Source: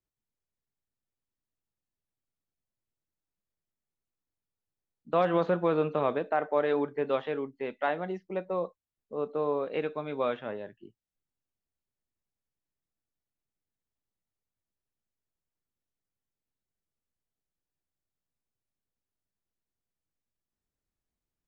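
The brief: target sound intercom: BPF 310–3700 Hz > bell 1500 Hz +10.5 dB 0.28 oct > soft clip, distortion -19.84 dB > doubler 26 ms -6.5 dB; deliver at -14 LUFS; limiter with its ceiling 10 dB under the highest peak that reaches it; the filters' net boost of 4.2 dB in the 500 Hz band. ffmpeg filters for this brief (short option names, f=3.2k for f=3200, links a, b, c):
-filter_complex "[0:a]equalizer=f=500:t=o:g=5.5,alimiter=limit=-21.5dB:level=0:latency=1,highpass=310,lowpass=3.7k,equalizer=f=1.5k:t=o:w=0.28:g=10.5,asoftclip=threshold=-23dB,asplit=2[a][b];[b]adelay=26,volume=-6.5dB[c];[a][c]amix=inputs=2:normalize=0,volume=18.5dB"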